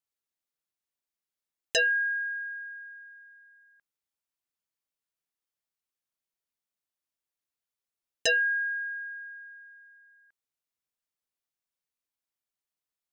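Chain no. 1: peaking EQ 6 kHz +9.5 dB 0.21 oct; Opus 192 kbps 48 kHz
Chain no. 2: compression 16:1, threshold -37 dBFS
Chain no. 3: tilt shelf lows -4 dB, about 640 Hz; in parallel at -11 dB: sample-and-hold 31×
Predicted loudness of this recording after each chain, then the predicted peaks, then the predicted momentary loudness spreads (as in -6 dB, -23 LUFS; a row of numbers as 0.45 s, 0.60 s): -27.5 LUFS, -39.5 LUFS, -24.5 LUFS; -13.5 dBFS, -19.5 dBFS, -12.0 dBFS; 21 LU, 16 LU, 20 LU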